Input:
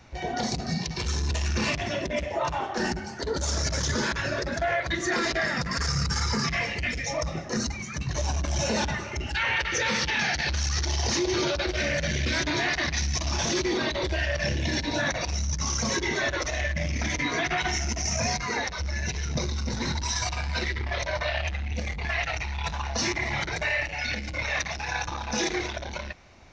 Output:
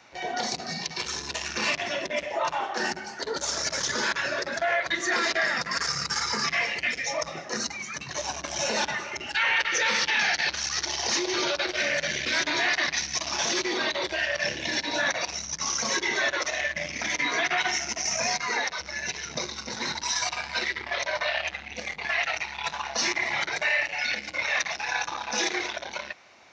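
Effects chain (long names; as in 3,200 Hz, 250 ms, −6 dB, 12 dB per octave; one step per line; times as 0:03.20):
meter weighting curve A
level +1.5 dB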